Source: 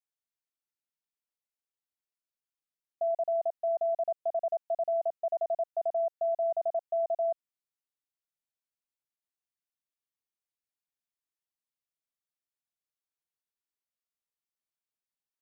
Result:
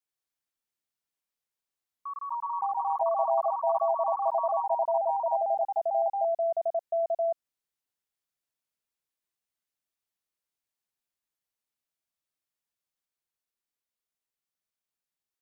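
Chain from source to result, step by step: echoes that change speed 88 ms, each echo +3 st, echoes 3; gain +1.5 dB

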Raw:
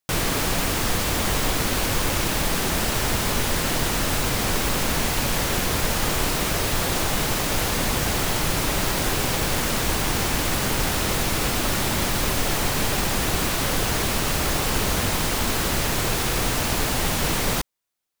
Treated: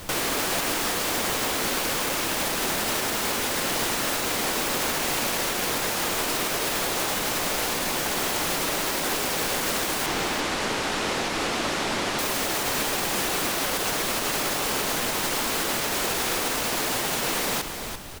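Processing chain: HPF 270 Hz 12 dB/oct; added noise pink -39 dBFS; 10.06–12.19 air absorption 69 m; echo 0.34 s -10 dB; limiter -16 dBFS, peak gain reduction 5 dB

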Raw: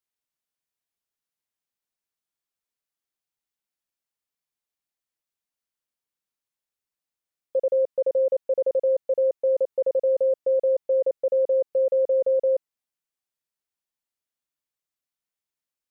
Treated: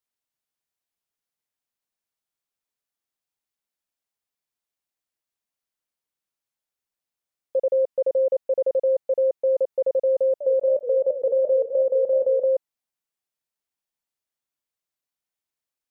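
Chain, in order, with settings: bell 720 Hz +2 dB; 10.2–12.46 warbling echo 0.202 s, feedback 52%, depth 217 cents, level -11 dB

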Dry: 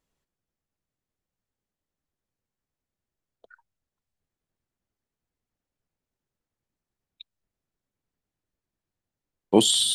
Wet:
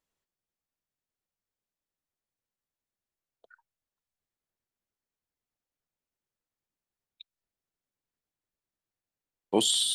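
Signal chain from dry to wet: low shelf 320 Hz -8 dB; gain -4 dB

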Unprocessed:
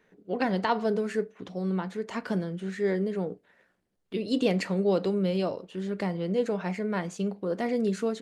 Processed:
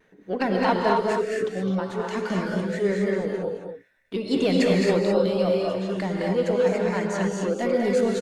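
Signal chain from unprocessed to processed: in parallel at -4 dB: soft clip -27 dBFS, distortion -10 dB; on the sum: reverb removal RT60 1.2 s; on a send: echo 0.21 s -6 dB; on the sum: non-linear reverb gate 0.29 s rising, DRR -1 dB; vibrato 0.79 Hz 27 cents

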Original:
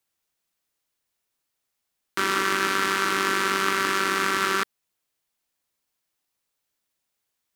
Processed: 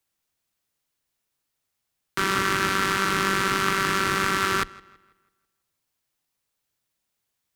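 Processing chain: octaver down 1 oct, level +1 dB; darkening echo 0.164 s, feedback 41%, low-pass 4900 Hz, level -22 dB

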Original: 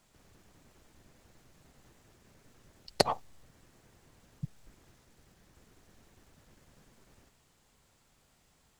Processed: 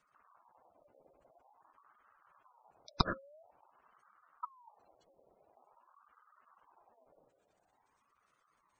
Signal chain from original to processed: spectral gate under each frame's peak -15 dB strong; 3.99–5.45 resonant high shelf 2600 Hz +8.5 dB, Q 3; ring modulator with a swept carrier 890 Hz, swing 40%, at 0.48 Hz; gain -2 dB

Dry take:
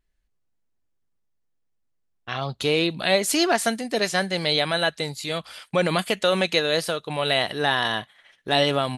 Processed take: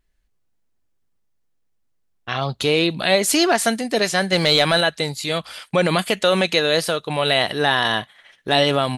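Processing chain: in parallel at -2 dB: limiter -14 dBFS, peak gain reduction 7.5 dB; 4.32–4.81 on the sum: sample leveller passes 1

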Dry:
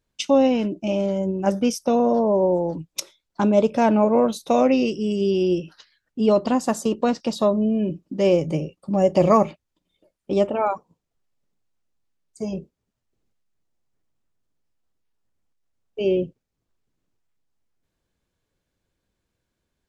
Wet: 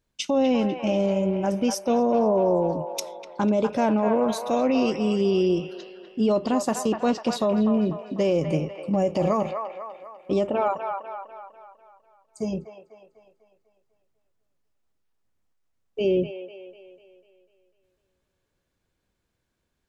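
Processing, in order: limiter -14 dBFS, peak gain reduction 9.5 dB; on a send: band-limited delay 0.248 s, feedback 50%, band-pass 1300 Hz, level -4 dB

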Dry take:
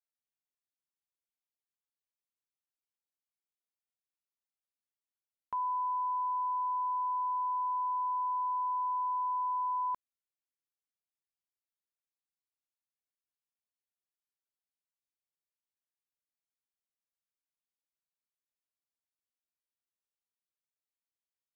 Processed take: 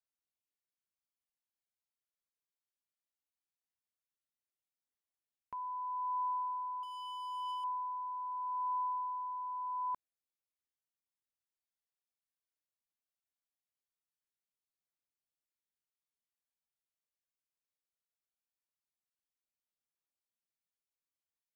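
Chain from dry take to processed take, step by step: 6.83–7.64 hard clip -35.5 dBFS, distortion -15 dB; phaser 0.2 Hz, delay 2 ms, feedback 33%; gain -5.5 dB

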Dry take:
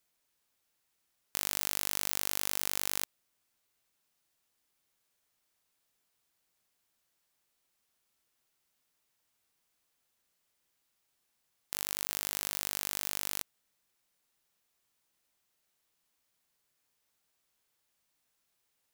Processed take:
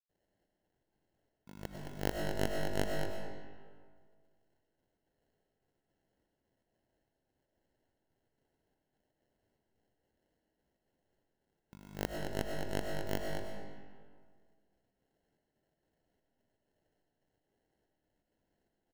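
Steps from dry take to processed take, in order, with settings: LPF 2100 Hz 12 dB/oct; notch 1400 Hz, Q 13; sample-rate reducer 1200 Hz, jitter 0%; step gate ".xxxx..xx" 163 bpm -60 dB; echo 0.218 s -7.5 dB; on a send at -1 dB: reverb RT60 1.8 s, pre-delay 60 ms; on the sum: gain +5.5 dB

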